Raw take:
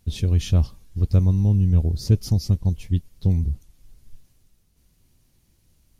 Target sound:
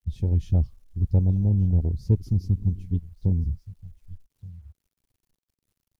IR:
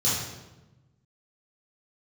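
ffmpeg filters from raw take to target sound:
-filter_complex "[0:a]asplit=2[link_01][link_02];[link_02]aecho=0:1:1178:0.126[link_03];[link_01][link_03]amix=inputs=2:normalize=0,acrusher=bits=8:mix=0:aa=0.000001,afwtdn=0.0447,volume=-3dB"

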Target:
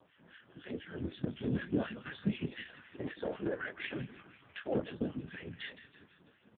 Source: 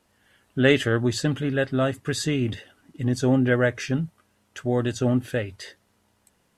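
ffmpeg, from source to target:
ffmpeg -i in.wav -filter_complex "[0:a]asplit=3[link_01][link_02][link_03];[link_01]afade=type=out:start_time=2.45:duration=0.02[link_04];[link_02]highpass=540,afade=type=in:start_time=2.45:duration=0.02,afade=type=out:start_time=4.74:duration=0.02[link_05];[link_03]afade=type=in:start_time=4.74:duration=0.02[link_06];[link_04][link_05][link_06]amix=inputs=3:normalize=0,equalizer=frequency=760:width_type=o:width=0.47:gain=-5,acompressor=threshold=-37dB:ratio=8,alimiter=level_in=11.5dB:limit=-24dB:level=0:latency=1:release=464,volume=-11.5dB,dynaudnorm=framelen=290:gausssize=9:maxgain=6dB,acrossover=split=1200[link_07][link_08];[link_07]aeval=exprs='val(0)*(1-1/2+1/2*cos(2*PI*4*n/s))':channel_layout=same[link_09];[link_08]aeval=exprs='val(0)*(1-1/2-1/2*cos(2*PI*4*n/s))':channel_layout=same[link_10];[link_09][link_10]amix=inputs=2:normalize=0,afftfilt=real='hypot(re,im)*cos(2*PI*random(0))':imag='hypot(re,im)*sin(2*PI*random(1))':win_size=512:overlap=0.75,asplit=2[link_11][link_12];[link_12]adelay=24,volume=-8.5dB[link_13];[link_11][link_13]amix=inputs=2:normalize=0,asplit=7[link_14][link_15][link_16][link_17][link_18][link_19][link_20];[link_15]adelay=164,afreqshift=-71,volume=-13.5dB[link_21];[link_16]adelay=328,afreqshift=-142,volume=-18.2dB[link_22];[link_17]adelay=492,afreqshift=-213,volume=-23dB[link_23];[link_18]adelay=656,afreqshift=-284,volume=-27.7dB[link_24];[link_19]adelay=820,afreqshift=-355,volume=-32.4dB[link_25];[link_20]adelay=984,afreqshift=-426,volume=-37.2dB[link_26];[link_14][link_21][link_22][link_23][link_24][link_25][link_26]amix=inputs=7:normalize=0,volume=16.5dB" -ar 8000 -c:a libopencore_amrnb -b:a 5150 out.amr

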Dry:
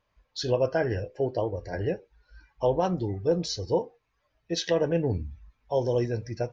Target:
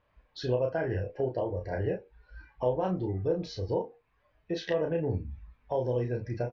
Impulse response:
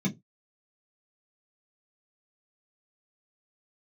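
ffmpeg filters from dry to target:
-filter_complex "[0:a]acompressor=threshold=-37dB:ratio=2,lowpass=2700,asplit=2[link_01][link_02];[link_02]adelay=32,volume=-4.5dB[link_03];[link_01][link_03]amix=inputs=2:normalize=0,volume=3dB"

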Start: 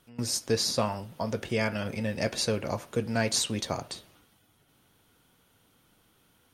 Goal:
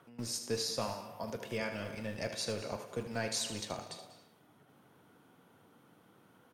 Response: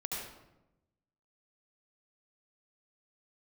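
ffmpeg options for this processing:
-filter_complex "[0:a]aecho=1:1:42|77:0.158|0.316,asplit=2[link_01][link_02];[1:a]atrim=start_sample=2205,afade=type=out:start_time=0.33:duration=0.01,atrim=end_sample=14994,adelay=115[link_03];[link_02][link_03]afir=irnorm=-1:irlink=0,volume=-13dB[link_04];[link_01][link_04]amix=inputs=2:normalize=0,adynamicequalizer=threshold=0.00631:dfrequency=230:dqfactor=1.5:tfrequency=230:tqfactor=1.5:attack=5:release=100:ratio=0.375:range=2.5:mode=cutabove:tftype=bell,acrossover=split=110|1700[link_05][link_06][link_07];[link_05]acrusher=bits=4:dc=4:mix=0:aa=0.000001[link_08];[link_06]acompressor=mode=upward:threshold=-42dB:ratio=2.5[link_09];[link_08][link_09][link_07]amix=inputs=3:normalize=0,asettb=1/sr,asplit=3[link_10][link_11][link_12];[link_10]atrim=end=0.814[link_13];[link_11]atrim=start=0.81:end=1.58,asetpts=PTS-STARTPTS,afade=type=in:duration=0.004:curve=qsin,afade=type=out:start_time=0.766:duration=0.004:curve=qsin,equalizer=frequency=13000:width_type=o:width=0.39:gain=8.5[link_14];[link_12]atrim=start=1.576[link_15];[link_13][link_14]acrossfade=duration=0.004:curve1=hsin:curve2=qsin[link_16];[link_16][link_15]acrossfade=duration=0.004:curve1=qsin:curve2=hsin,volume=-8.5dB"

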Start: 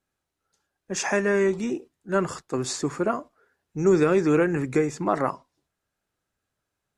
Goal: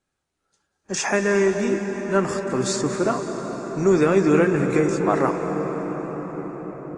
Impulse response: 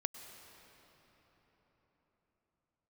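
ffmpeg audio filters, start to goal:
-filter_complex "[1:a]atrim=start_sample=2205,asetrate=22932,aresample=44100[link_01];[0:a][link_01]afir=irnorm=-1:irlink=0" -ar 22050 -c:a aac -b:a 32k

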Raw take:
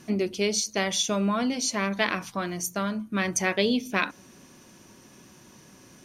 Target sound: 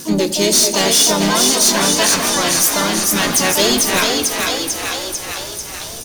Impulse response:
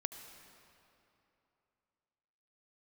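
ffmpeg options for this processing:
-filter_complex "[0:a]asubboost=boost=11:cutoff=59,asplit=9[link_01][link_02][link_03][link_04][link_05][link_06][link_07][link_08][link_09];[link_02]adelay=445,afreqshift=41,volume=-6dB[link_10];[link_03]adelay=890,afreqshift=82,volume=-10.7dB[link_11];[link_04]adelay=1335,afreqshift=123,volume=-15.5dB[link_12];[link_05]adelay=1780,afreqshift=164,volume=-20.2dB[link_13];[link_06]adelay=2225,afreqshift=205,volume=-24.9dB[link_14];[link_07]adelay=2670,afreqshift=246,volume=-29.7dB[link_15];[link_08]adelay=3115,afreqshift=287,volume=-34.4dB[link_16];[link_09]adelay=3560,afreqshift=328,volume=-39.1dB[link_17];[link_01][link_10][link_11][link_12][link_13][link_14][link_15][link_16][link_17]amix=inputs=9:normalize=0,aexciter=amount=2:drive=9.2:freq=3400,asoftclip=type=tanh:threshold=-21.5dB,asplit=3[link_18][link_19][link_20];[link_19]asetrate=37084,aresample=44100,atempo=1.18921,volume=-7dB[link_21];[link_20]asetrate=66075,aresample=44100,atempo=0.66742,volume=-3dB[link_22];[link_18][link_21][link_22]amix=inputs=3:normalize=0,asplit=2[link_23][link_24];[1:a]atrim=start_sample=2205[link_25];[link_24][link_25]afir=irnorm=-1:irlink=0,volume=3.5dB[link_26];[link_23][link_26]amix=inputs=2:normalize=0,volume=3dB"

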